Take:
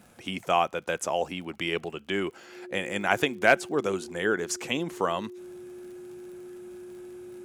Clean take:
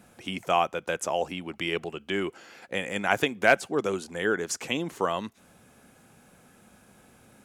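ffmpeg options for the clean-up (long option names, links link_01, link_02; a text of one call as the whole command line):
ffmpeg -i in.wav -af "adeclick=threshold=4,bandreject=frequency=360:width=30" out.wav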